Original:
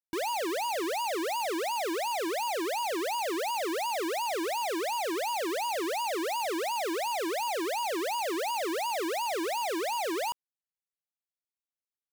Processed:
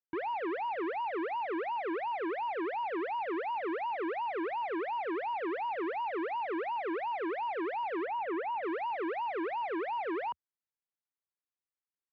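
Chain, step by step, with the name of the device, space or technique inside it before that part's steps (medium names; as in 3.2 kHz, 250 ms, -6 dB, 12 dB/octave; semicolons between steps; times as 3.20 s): bass cabinet (cabinet simulation 61–2100 Hz, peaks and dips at 80 Hz -9 dB, 200 Hz -9 dB, 620 Hz -9 dB); 8.05–8.63 s: tone controls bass +1 dB, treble -14 dB; trim -1 dB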